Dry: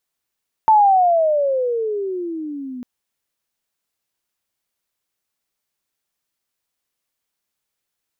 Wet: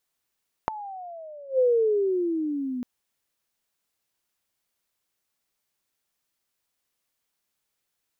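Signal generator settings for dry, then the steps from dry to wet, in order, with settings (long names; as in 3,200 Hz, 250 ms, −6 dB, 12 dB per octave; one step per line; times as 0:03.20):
pitch glide with a swell sine, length 2.15 s, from 892 Hz, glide −22.5 semitones, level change −20 dB, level −8 dB
gate with flip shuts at −15 dBFS, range −24 dB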